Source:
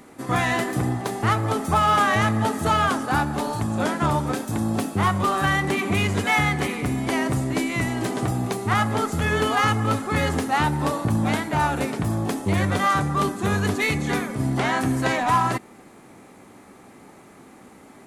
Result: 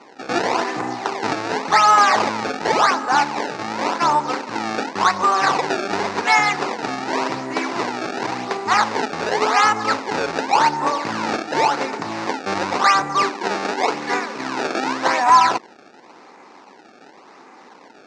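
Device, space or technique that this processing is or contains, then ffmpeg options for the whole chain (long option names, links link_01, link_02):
circuit-bent sampling toy: -filter_complex "[0:a]acrusher=samples=25:mix=1:aa=0.000001:lfo=1:lforange=40:lforate=0.9,highpass=440,equalizer=frequency=610:width_type=q:width=4:gain=-4,equalizer=frequency=940:width_type=q:width=4:gain=5,equalizer=frequency=3200:width_type=q:width=4:gain=-8,lowpass=frequency=5900:width=0.5412,lowpass=frequency=5900:width=1.3066,asettb=1/sr,asplit=3[link_01][link_02][link_03];[link_01]atrim=end=13.234[link_04];[link_02]atrim=start=13.23:end=15.07,asetpts=PTS-STARTPTS,afade=type=in:duration=0.004:curve=qsin,afade=type=out:start_time=1.836:duration=0.004:curve=qsin,highpass=180[link_05];[link_03]atrim=start=15.066[link_06];[link_04][link_05]acrossfade=duration=0.004:curve1=hsin:curve2=qsin[link_07];[link_07][link_06]acrossfade=duration=0.004:curve1=qsin:curve2=hsin,volume=6dB"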